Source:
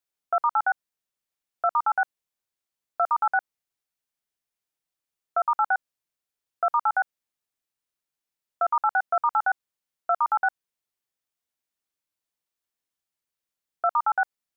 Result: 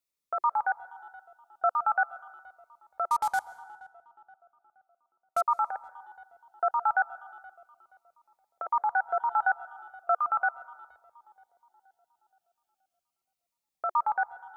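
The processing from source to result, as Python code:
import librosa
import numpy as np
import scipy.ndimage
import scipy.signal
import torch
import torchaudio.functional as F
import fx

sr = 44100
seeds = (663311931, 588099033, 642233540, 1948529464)

y = fx.cvsd(x, sr, bps=64000, at=(3.09, 5.41))
y = fx.echo_tape(y, sr, ms=474, feedback_pct=58, wet_db=-19, lp_hz=1100.0, drive_db=12.0, wow_cents=13)
y = fx.rev_plate(y, sr, seeds[0], rt60_s=1.2, hf_ratio=0.7, predelay_ms=115, drr_db=19.0)
y = fx.notch_cascade(y, sr, direction='falling', hz=0.37)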